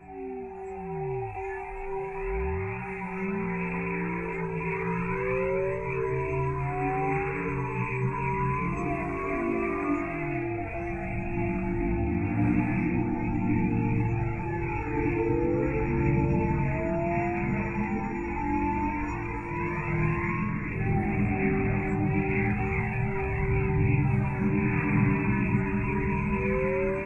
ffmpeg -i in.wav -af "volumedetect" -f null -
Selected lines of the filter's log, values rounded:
mean_volume: -27.8 dB
max_volume: -12.2 dB